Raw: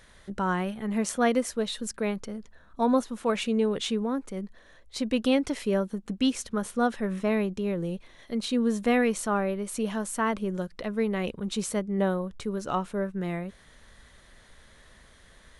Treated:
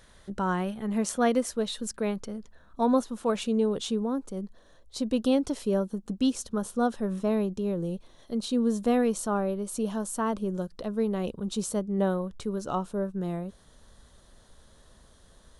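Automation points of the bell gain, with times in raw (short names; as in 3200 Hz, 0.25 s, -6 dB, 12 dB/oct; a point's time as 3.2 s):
bell 2100 Hz 0.83 oct
2.92 s -5.5 dB
3.79 s -14 dB
11.87 s -14 dB
12.19 s -3.5 dB
12.87 s -15 dB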